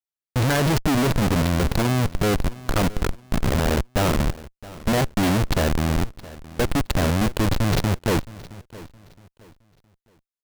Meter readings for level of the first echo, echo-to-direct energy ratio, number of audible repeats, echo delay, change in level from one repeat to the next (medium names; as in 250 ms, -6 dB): -19.0 dB, -18.5 dB, 2, 667 ms, -10.0 dB